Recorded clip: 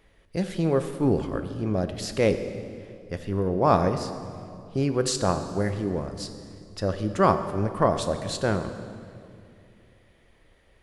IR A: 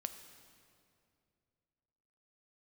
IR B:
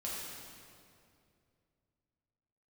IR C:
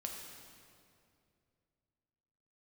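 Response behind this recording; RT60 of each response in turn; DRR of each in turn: A; 2.5 s, 2.5 s, 2.5 s; 8.0 dB, -6.5 dB, 0.5 dB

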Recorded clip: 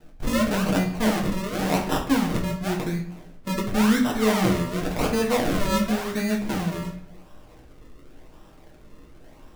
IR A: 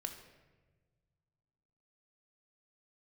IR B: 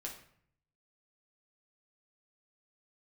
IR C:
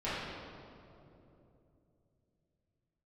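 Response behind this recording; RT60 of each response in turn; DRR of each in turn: B; 1.4 s, 0.60 s, 3.0 s; 5.0 dB, -1.5 dB, -13.0 dB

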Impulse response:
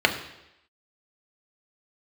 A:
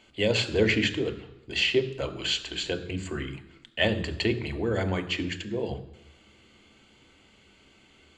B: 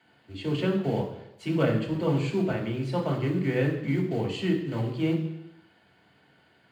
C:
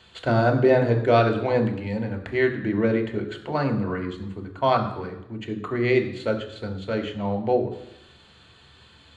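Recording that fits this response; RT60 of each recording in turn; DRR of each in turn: C; 0.85 s, 0.85 s, 0.85 s; 7.5 dB, -1.0 dB, 3.5 dB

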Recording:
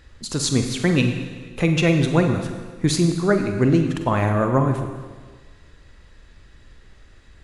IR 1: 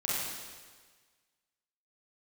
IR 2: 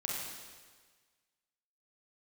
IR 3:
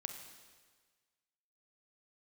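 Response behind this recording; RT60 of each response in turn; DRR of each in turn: 3; 1.5 s, 1.5 s, 1.5 s; -8.0 dB, -4.0 dB, 5.0 dB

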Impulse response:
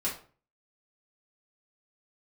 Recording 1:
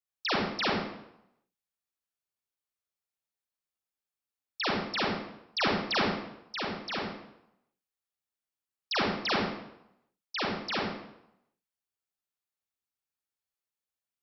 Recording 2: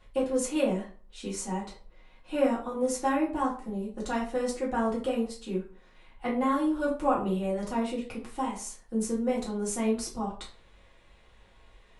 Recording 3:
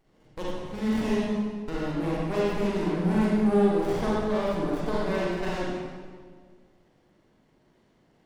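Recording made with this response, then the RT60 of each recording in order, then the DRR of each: 2; 0.80 s, 0.40 s, 1.7 s; -4.5 dB, -7.0 dB, -6.0 dB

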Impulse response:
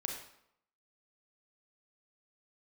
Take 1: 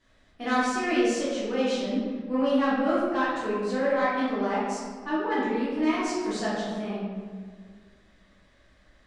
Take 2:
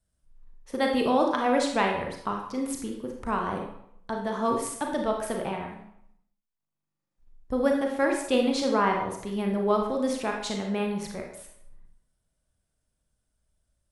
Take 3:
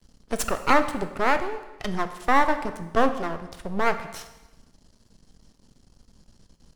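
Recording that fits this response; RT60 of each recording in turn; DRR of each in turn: 2; 1.8 s, 0.75 s, 1.1 s; -10.0 dB, 1.0 dB, 8.5 dB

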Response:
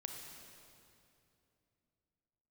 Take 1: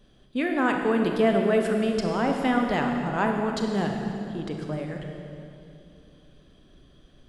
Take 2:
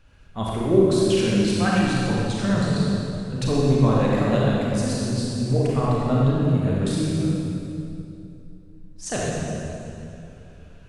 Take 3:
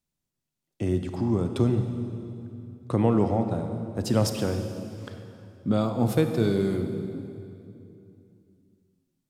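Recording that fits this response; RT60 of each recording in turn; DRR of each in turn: 1; 2.8 s, 2.7 s, 2.8 s; 2.0 dB, -5.5 dB, 6.5 dB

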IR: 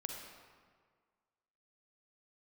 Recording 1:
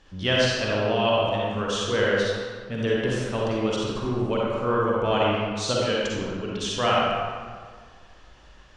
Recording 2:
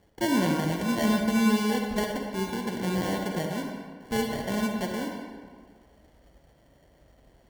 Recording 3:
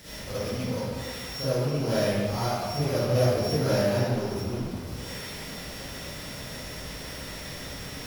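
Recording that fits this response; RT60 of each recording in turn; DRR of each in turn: 2; 1.7 s, 1.7 s, 1.7 s; -5.0 dB, 1.5 dB, -13.0 dB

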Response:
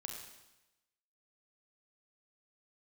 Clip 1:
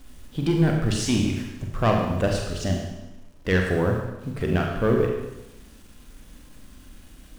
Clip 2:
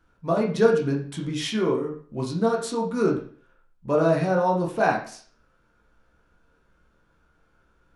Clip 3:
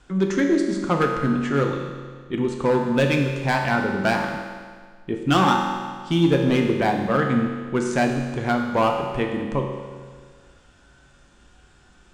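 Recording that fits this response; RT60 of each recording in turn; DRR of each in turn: 1; 1.0 s, 0.45 s, 1.7 s; 1.0 dB, -1.0 dB, 1.5 dB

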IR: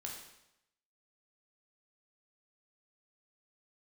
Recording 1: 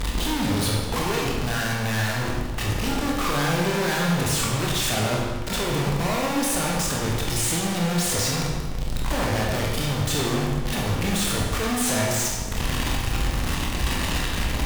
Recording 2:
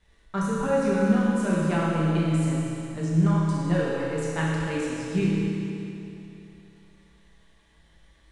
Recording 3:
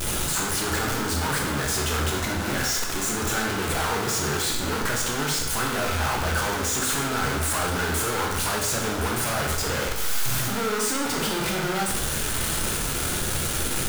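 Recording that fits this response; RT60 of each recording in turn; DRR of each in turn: 3; 1.3 s, 2.9 s, 0.85 s; -3.0 dB, -7.5 dB, -1.0 dB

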